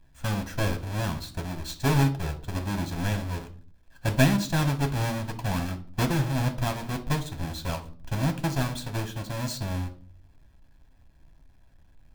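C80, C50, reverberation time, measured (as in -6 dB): 19.0 dB, 13.5 dB, 0.45 s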